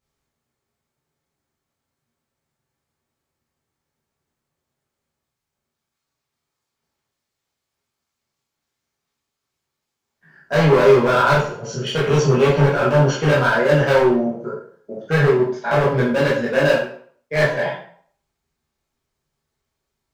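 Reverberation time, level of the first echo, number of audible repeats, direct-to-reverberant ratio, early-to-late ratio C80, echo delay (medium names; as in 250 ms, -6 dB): 0.55 s, no echo, no echo, -7.0 dB, 8.5 dB, no echo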